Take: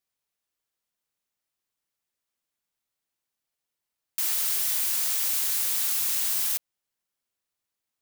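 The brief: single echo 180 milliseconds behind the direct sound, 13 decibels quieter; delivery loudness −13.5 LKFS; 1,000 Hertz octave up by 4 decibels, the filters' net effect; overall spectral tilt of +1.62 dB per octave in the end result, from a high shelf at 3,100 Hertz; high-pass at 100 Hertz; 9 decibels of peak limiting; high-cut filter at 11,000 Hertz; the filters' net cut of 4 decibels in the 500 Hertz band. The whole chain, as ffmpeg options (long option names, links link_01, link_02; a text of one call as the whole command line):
ffmpeg -i in.wav -af "highpass=100,lowpass=11000,equalizer=frequency=500:width_type=o:gain=-8,equalizer=frequency=1000:width_type=o:gain=7.5,highshelf=frequency=3100:gain=-5,alimiter=level_in=7.5dB:limit=-24dB:level=0:latency=1,volume=-7.5dB,aecho=1:1:180:0.224,volume=25dB" out.wav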